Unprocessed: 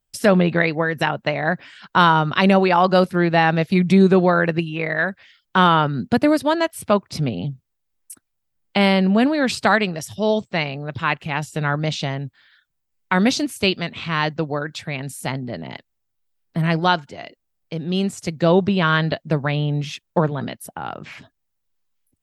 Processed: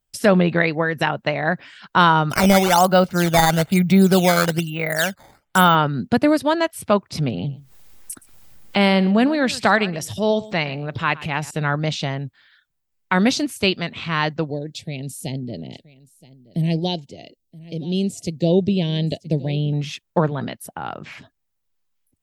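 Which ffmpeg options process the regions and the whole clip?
-filter_complex "[0:a]asettb=1/sr,asplit=3[a][b][c];[a]atrim=end=2.304[d];[b]atrim=start=2.3:end=5.75,asetpts=PTS-STARTPTS,afade=t=in:d=0.004:c=qsin,afade=t=out:st=3.446:d=0.004:c=qsin,acrusher=samples=9:mix=1:aa=0.000001:lfo=1:lforange=14.4:lforate=1.1,aecho=1:1:1.4:0.34,atrim=end_sample=152145[e];[c]atrim=start=5.746[f];[d][e]acrossfade=d=0.004:c1=hsin:c2=qsin[g];[g][f]acrossfade=d=0.004:c1=qsin:c2=hsin,asettb=1/sr,asplit=3[h][i][j];[h]atrim=end=7.184[k];[i]atrim=start=7.18:end=11.51,asetpts=PTS-STARTPTS,afade=t=in:d=0.004:c=qsin,afade=t=out:st=4.326:d=0.004:c=qsin,acompressor=mode=upward:threshold=-22dB:ratio=2.5:attack=3.2:release=140:knee=2.83:detection=peak,aecho=1:1:119:0.112,atrim=end_sample=190953[l];[j]atrim=start=11.506[m];[k][l]acrossfade=d=0.004:c1=hsin:c2=qsin[n];[n][m]acrossfade=d=0.004:c1=qsin:c2=hsin,asettb=1/sr,asplit=3[o][p][q];[o]atrim=end=14.504[r];[p]atrim=start=14.5:end=19.73,asetpts=PTS-STARTPTS,afade=t=in:d=0.004:c=qsin,afade=t=out:st=5.226:d=0.004:c=qsin,asuperstop=centerf=1300:order=4:qfactor=0.51,aecho=1:1:974:0.0944,atrim=end_sample=230643[s];[q]atrim=start=19.726[t];[r][s]acrossfade=d=0.004:c1=hsin:c2=qsin[u];[u][t]acrossfade=d=0.004:c1=qsin:c2=hsin"

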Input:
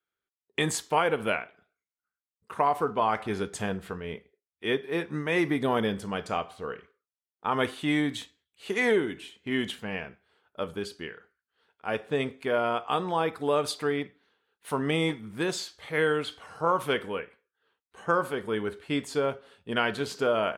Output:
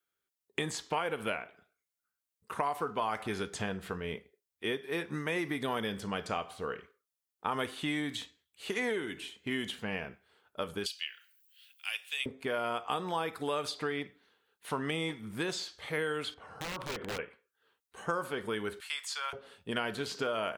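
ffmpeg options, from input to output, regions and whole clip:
-filter_complex "[0:a]asettb=1/sr,asplit=3[a][b][c];[a]atrim=end=10.864[d];[b]atrim=start=10.86:end=12.26,asetpts=PTS-STARTPTS,afade=t=in:d=0.004:c=qsin,afade=t=out:st=1.396:d=0.004:c=qsin,highpass=f=2.7k:t=q:w=3.5,aemphasis=mode=production:type=riaa[e];[c]atrim=start=12.256[f];[d][e]acrossfade=d=0.004:c1=hsin:c2=qsin[g];[g][f]acrossfade=d=0.004:c1=qsin:c2=hsin,asettb=1/sr,asplit=3[h][i][j];[h]atrim=end=16.344[k];[i]atrim=start=16.34:end=17.19,asetpts=PTS-STARTPTS,afade=t=in:d=0.004:c=qsin,afade=t=out:st=0.846:d=0.004:c=qsin,lowpass=f=1k:p=1,acompressor=threshold=-32dB:ratio=12:attack=3.2:release=140:knee=1:detection=peak,aeval=exprs='(mod(37.6*val(0)+1,2)-1)/37.6':c=same[l];[j]atrim=start=17.186[m];[k][l]acrossfade=d=0.004:c1=hsin:c2=qsin[n];[n][m]acrossfade=d=0.004:c1=qsin:c2=hsin,asettb=1/sr,asplit=3[o][p][q];[o]atrim=end=18.804[r];[p]atrim=start=18.8:end=19.33,asetpts=PTS-STARTPTS,afade=t=in:d=0.004:c=qsin,afade=t=out:st=0.526:d=0.004:c=qsin,highpass=f=1.1k:w=0.5412,highpass=f=1.1k:w=1.3066,highshelf=f=3.3k:g=11.5[s];[q]atrim=start=19.326[t];[r][s]acrossfade=d=0.004:c1=hsin:c2=qsin[u];[u][t]acrossfade=d=0.004:c1=qsin:c2=hsin,highshelf=f=6.2k:g=7.5,acrossover=split=1100|5900[v][w][x];[v]acompressor=threshold=-34dB:ratio=4[y];[w]acompressor=threshold=-36dB:ratio=4[z];[x]acompressor=threshold=-55dB:ratio=4[aa];[y][z][aa]amix=inputs=3:normalize=0"

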